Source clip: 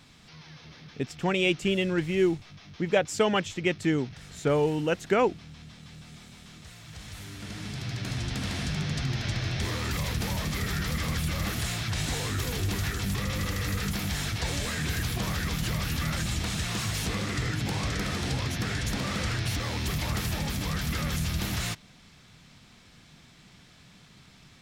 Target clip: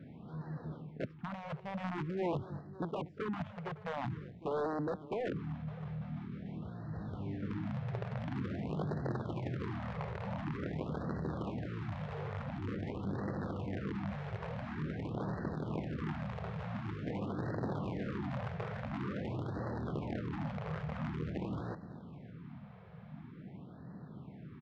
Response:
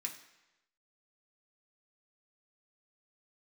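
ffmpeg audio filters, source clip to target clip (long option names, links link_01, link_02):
-filter_complex "[0:a]areverse,acompressor=threshold=-40dB:ratio=6,areverse,aeval=exprs='(mod(59.6*val(0)+1,2)-1)/59.6':channel_layout=same,highpass=130,lowpass=3600,adynamicsmooth=sensitivity=2.5:basefreq=780,asplit=2[link_01][link_02];[link_02]aecho=0:1:239|558:0.126|0.119[link_03];[link_01][link_03]amix=inputs=2:normalize=0,afftfilt=real='re*(1-between(b*sr/1024,270*pow(2800/270,0.5+0.5*sin(2*PI*0.47*pts/sr))/1.41,270*pow(2800/270,0.5+0.5*sin(2*PI*0.47*pts/sr))*1.41))':imag='im*(1-between(b*sr/1024,270*pow(2800/270,0.5+0.5*sin(2*PI*0.47*pts/sr))/1.41,270*pow(2800/270,0.5+0.5*sin(2*PI*0.47*pts/sr))*1.41))':win_size=1024:overlap=0.75,volume=10dB"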